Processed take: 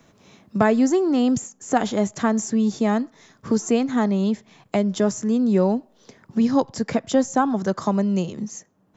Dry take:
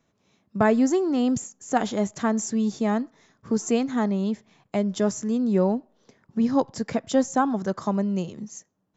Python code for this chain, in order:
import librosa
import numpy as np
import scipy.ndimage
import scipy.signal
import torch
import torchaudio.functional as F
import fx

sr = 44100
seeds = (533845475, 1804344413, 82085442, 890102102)

y = fx.band_squash(x, sr, depth_pct=40)
y = y * 10.0 ** (3.0 / 20.0)